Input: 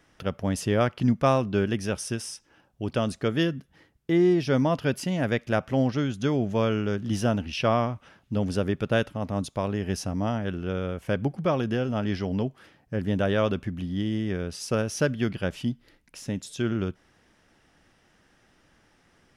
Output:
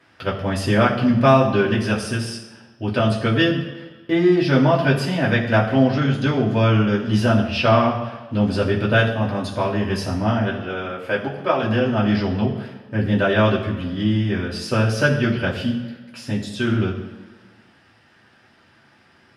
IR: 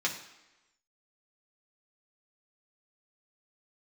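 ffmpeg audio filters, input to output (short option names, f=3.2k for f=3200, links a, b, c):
-filter_complex "[0:a]asettb=1/sr,asplit=3[a][b][c];[a]atrim=end=10.514[d];[b]atrim=start=10.51:end=11.63,asetpts=PTS-STARTPTS,afade=t=in:d=0.004:c=qsin,afade=t=out:st=1.116:d=0.004:c=qsin,bass=f=250:g=-14,treble=f=4k:g=-3[e];[c]atrim=start=11.626[f];[d][e]acrossfade=d=0.004:c1=hsin:c2=qsin[g];[g][f]acrossfade=d=0.004:c1=qsin:c2=hsin[h];[1:a]atrim=start_sample=2205,asetrate=31311,aresample=44100[i];[h][i]afir=irnorm=-1:irlink=0,volume=-1dB"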